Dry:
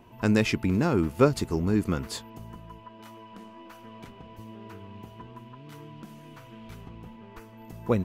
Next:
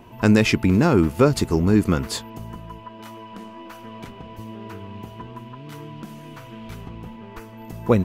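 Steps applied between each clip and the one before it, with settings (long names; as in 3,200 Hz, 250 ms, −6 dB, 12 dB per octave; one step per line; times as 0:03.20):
boost into a limiter +12 dB
level −4.5 dB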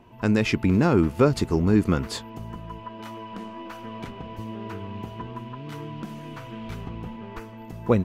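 high-shelf EQ 7,400 Hz −9 dB
automatic gain control gain up to 8 dB
level −6.5 dB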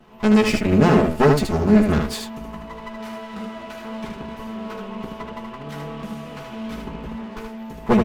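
lower of the sound and its delayed copy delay 4.7 ms
on a send: ambience of single reflections 14 ms −7.5 dB, 76 ms −4 dB
on the sum: level +3 dB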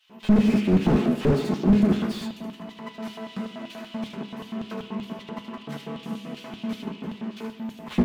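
auto-filter high-pass square 5.2 Hz 210–3,200 Hz
on a send at −7 dB: convolution reverb RT60 0.90 s, pre-delay 3 ms
on the sum: slew-rate limiting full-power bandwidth 76 Hz
level −4 dB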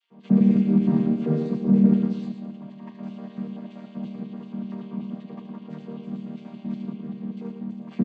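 channel vocoder with a chord as carrier major triad, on D#3
on a send: single-tap delay 112 ms −7.5 dB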